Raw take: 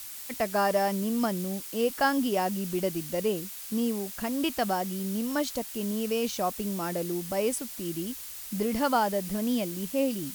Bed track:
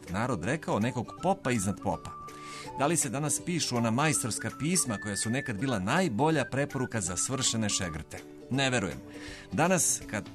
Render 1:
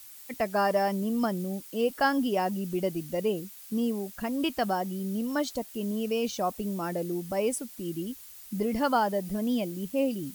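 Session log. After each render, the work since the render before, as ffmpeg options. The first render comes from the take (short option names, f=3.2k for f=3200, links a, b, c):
-af "afftdn=nr=9:nf=-41"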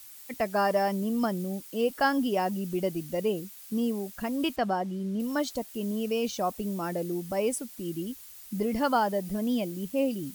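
-filter_complex "[0:a]asettb=1/sr,asplit=3[a][b][c];[a]atrim=end=4.564[d];[b]atrim=start=4.56:end=5.2,asetpts=PTS-STARTPTS,afade=t=in:d=0.004:c=qsin,afade=t=out:st=0.636:d=0.004:c=qsin,aemphasis=mode=reproduction:type=50fm[e];[c]atrim=start=5.196[f];[d][e]acrossfade=d=0.004:c1=hsin:c2=qsin[g];[g][f]acrossfade=d=0.004:c1=qsin:c2=hsin"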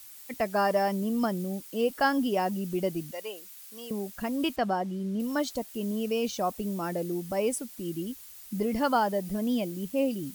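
-filter_complex "[0:a]asettb=1/sr,asplit=3[a][b][c];[a]atrim=end=3.114[d];[b]atrim=start=3.11:end=3.91,asetpts=PTS-STARTPTS,afade=t=in:d=0.004:c=qsin,afade=t=out:st=0.796:d=0.004:c=qsin,highpass=810[e];[c]atrim=start=3.906[f];[d][e]acrossfade=d=0.004:c1=hsin:c2=qsin[g];[g][f]acrossfade=d=0.004:c1=qsin:c2=hsin"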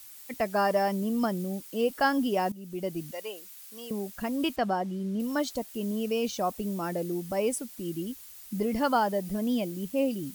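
-filter_complex "[0:a]asplit=2[a][b];[a]atrim=end=2.52,asetpts=PTS-STARTPTS,afade=t=out:st=2.516:d=0.004:c=hsin:silence=0.158489[c];[b]atrim=start=2.52,asetpts=PTS-STARTPTS,afade=t=in:d=0.56:silence=0.158489[d];[c][d]concat=n=2:v=0:a=1"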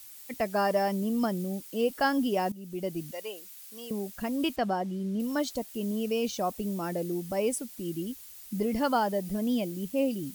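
-af "equalizer=f=1.2k:t=o:w=1.4:g=-2.5"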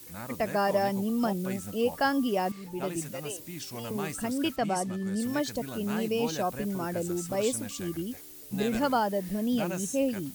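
-filter_complex "[1:a]volume=-10.5dB[a];[0:a][a]amix=inputs=2:normalize=0"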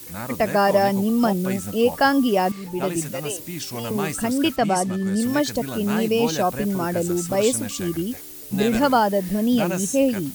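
-af "volume=8.5dB"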